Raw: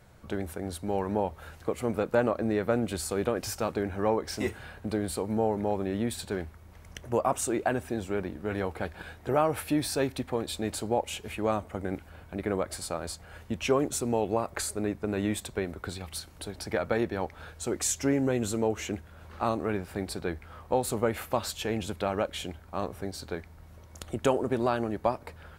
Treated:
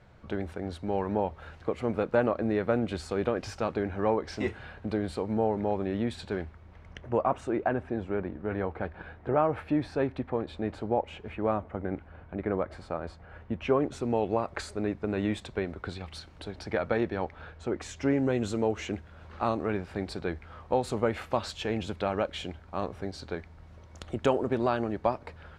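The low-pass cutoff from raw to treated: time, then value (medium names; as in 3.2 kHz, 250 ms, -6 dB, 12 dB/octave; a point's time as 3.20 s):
6.38 s 3.9 kHz
7.60 s 1.9 kHz
13.60 s 1.9 kHz
14.24 s 4 kHz
17.20 s 4 kHz
17.71 s 2.2 kHz
18.33 s 4.9 kHz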